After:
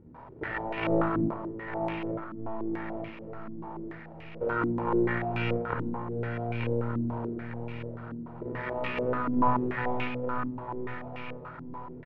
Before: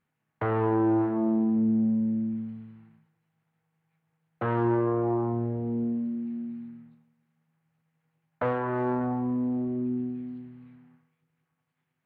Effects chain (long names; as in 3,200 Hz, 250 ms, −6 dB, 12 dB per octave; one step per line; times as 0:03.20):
linear delta modulator 16 kbit/s, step −26 dBFS
low-shelf EQ 410 Hz −6 dB
brickwall limiter −23 dBFS, peak gain reduction 6 dB
hollow resonant body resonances 230/650 Hz, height 9 dB, ringing for 80 ms
pitch-shifted copies added −12 semitones −10 dB, +12 semitones −10 dB
power curve on the samples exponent 3
gate with flip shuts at −25 dBFS, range −25 dB
repeating echo 904 ms, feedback 46%, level −7 dB
rectangular room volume 3,900 cubic metres, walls furnished, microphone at 4.5 metres
low-pass on a step sequencer 6.9 Hz 280–2,500 Hz
level +8.5 dB